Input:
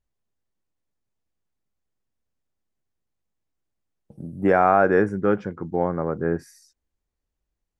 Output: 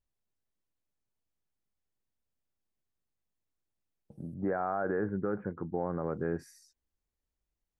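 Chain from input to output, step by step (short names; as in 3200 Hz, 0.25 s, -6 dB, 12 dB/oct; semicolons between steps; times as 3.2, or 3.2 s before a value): 4.34–6.04 steep low-pass 1800 Hz 36 dB/oct; limiter -16.5 dBFS, peak gain reduction 10.5 dB; gain -6 dB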